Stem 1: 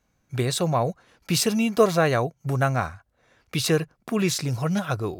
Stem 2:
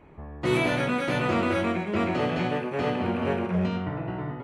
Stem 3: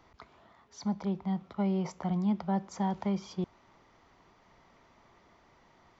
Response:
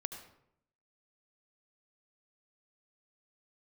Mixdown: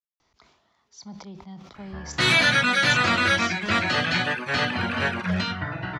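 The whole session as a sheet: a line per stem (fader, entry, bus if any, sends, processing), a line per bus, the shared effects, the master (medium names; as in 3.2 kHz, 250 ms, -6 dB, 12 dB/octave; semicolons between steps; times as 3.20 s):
mute
+0.5 dB, 1.75 s, no send, reverb removal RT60 0.59 s; fifteen-band graphic EQ 100 Hz +4 dB, 400 Hz -8 dB, 1.6 kHz +12 dB, 4 kHz +8 dB
-10.0 dB, 0.20 s, no send, decay stretcher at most 63 dB/s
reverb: none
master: peaking EQ 5.7 kHz +13.5 dB 1.9 oct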